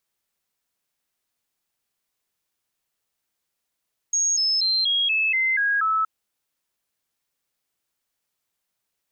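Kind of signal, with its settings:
stepped sweep 6,570 Hz down, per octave 3, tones 8, 0.24 s, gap 0.00 s −18.5 dBFS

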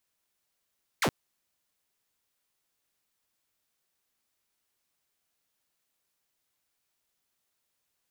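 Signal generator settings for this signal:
single falling chirp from 2,500 Hz, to 100 Hz, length 0.07 s saw, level −20.5 dB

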